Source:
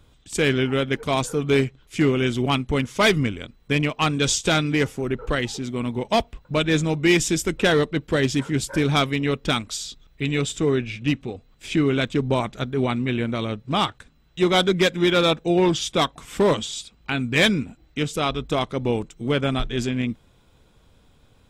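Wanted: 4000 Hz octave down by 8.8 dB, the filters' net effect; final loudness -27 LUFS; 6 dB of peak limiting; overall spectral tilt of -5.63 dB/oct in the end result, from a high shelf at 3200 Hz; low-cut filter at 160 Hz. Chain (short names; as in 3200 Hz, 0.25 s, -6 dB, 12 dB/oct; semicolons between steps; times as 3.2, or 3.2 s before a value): HPF 160 Hz; high shelf 3200 Hz -5 dB; bell 4000 Hz -8 dB; gain -1 dB; limiter -15 dBFS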